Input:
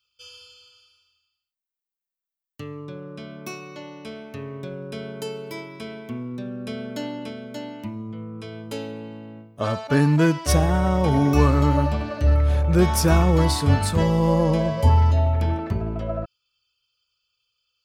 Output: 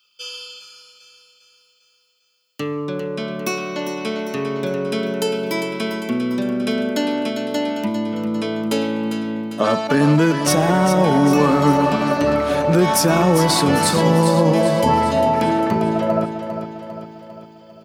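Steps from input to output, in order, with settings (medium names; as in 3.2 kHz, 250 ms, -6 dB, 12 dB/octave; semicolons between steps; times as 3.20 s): high-pass 170 Hz 24 dB/octave; in parallel at 0 dB: compression, threshold -32 dBFS, peak gain reduction 17 dB; on the sum: peak limiter -13.5 dBFS, peak gain reduction 6.5 dB; feedback delay 400 ms, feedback 53%, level -9 dB; trim +6.5 dB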